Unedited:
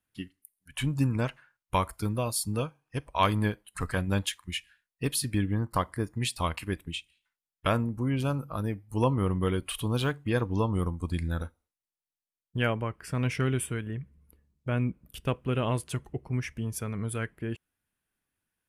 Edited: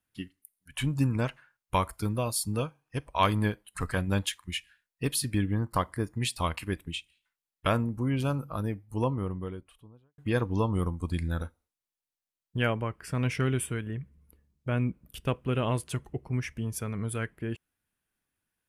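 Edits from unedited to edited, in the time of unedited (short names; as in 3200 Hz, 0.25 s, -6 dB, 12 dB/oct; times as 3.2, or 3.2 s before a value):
8.44–10.18 studio fade out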